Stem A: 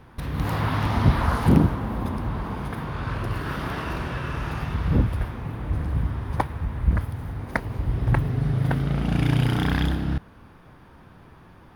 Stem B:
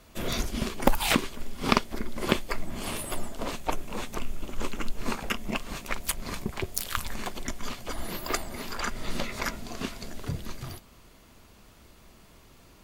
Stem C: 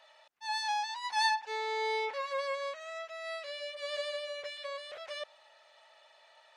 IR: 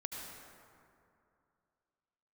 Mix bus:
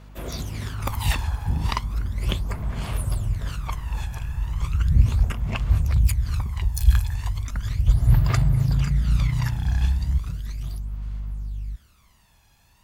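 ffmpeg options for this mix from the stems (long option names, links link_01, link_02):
-filter_complex "[0:a]aeval=exprs='val(0)+0.0141*(sin(2*PI*50*n/s)+sin(2*PI*2*50*n/s)/2+sin(2*PI*3*50*n/s)/3+sin(2*PI*4*50*n/s)/4+sin(2*PI*5*50*n/s)/5)':channel_layout=same,volume=-17dB,asplit=2[link_01][link_02];[link_02]volume=-11.5dB[link_03];[1:a]highpass=frequency=460:poles=1,volume=-5dB[link_04];[3:a]atrim=start_sample=2205[link_05];[link_03][link_05]afir=irnorm=-1:irlink=0[link_06];[link_01][link_04][link_06]amix=inputs=3:normalize=0,asubboost=boost=7.5:cutoff=120,aphaser=in_gain=1:out_gain=1:delay=1.2:decay=0.6:speed=0.36:type=sinusoidal"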